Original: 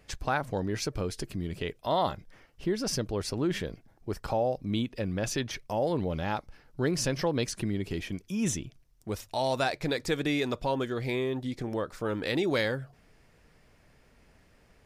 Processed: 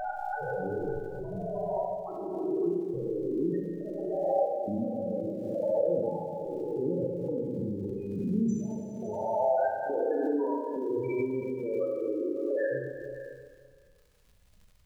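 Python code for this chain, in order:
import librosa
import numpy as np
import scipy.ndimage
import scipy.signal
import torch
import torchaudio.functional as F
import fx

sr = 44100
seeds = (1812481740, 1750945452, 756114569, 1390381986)

p1 = fx.spec_swells(x, sr, rise_s=2.9)
p2 = fx.lowpass(p1, sr, hz=3700.0, slope=6)
p3 = fx.low_shelf(p2, sr, hz=480.0, db=-6.5)
p4 = fx.spec_topn(p3, sr, count=4)
p5 = fx.step_gate(p4, sr, bpm=138, pattern='x..xxxxx', floor_db=-24.0, edge_ms=4.5)
p6 = fx.dmg_crackle(p5, sr, seeds[0], per_s=86.0, level_db=-54.0)
p7 = p6 + fx.echo_single(p6, sr, ms=558, db=-14.0, dry=0)
p8 = fx.rev_schroeder(p7, sr, rt60_s=1.7, comb_ms=31, drr_db=-1.5)
y = fx.pre_swell(p8, sr, db_per_s=30.0)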